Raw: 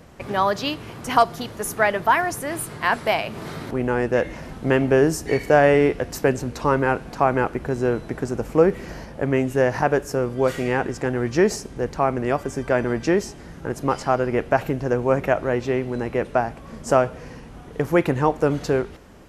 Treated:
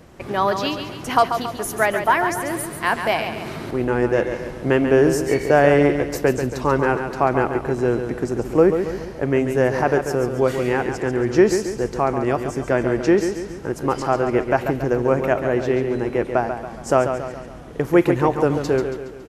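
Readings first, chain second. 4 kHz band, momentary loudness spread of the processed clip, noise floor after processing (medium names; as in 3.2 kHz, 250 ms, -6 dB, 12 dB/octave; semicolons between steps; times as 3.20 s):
+1.0 dB, 10 LU, -35 dBFS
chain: peaking EQ 350 Hz +5.5 dB 0.28 oct; feedback delay 139 ms, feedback 48%, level -8 dB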